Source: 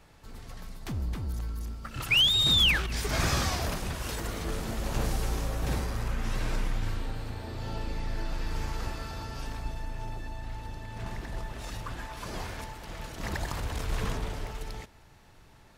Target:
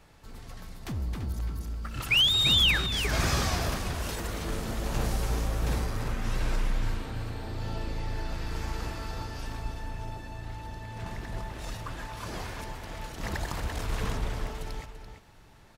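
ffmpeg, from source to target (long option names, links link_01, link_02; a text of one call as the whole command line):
ffmpeg -i in.wav -filter_complex "[0:a]asplit=2[link_01][link_02];[link_02]adelay=338.2,volume=-7dB,highshelf=frequency=4000:gain=-7.61[link_03];[link_01][link_03]amix=inputs=2:normalize=0" out.wav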